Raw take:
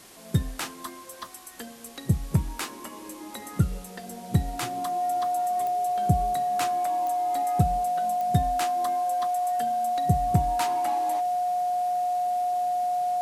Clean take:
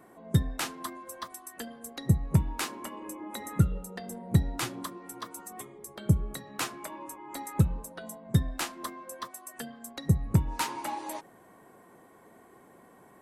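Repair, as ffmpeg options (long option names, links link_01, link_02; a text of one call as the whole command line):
ffmpeg -i in.wav -af "adeclick=threshold=4,bandreject=frequency=720:width=30,afwtdn=0.0035" out.wav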